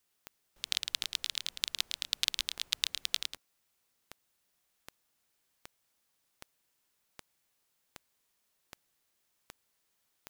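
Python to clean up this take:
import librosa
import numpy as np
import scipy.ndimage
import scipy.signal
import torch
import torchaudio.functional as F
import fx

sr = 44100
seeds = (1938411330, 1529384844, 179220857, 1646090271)

y = fx.fix_declick_ar(x, sr, threshold=10.0)
y = fx.fix_echo_inverse(y, sr, delay_ms=109, level_db=-6.5)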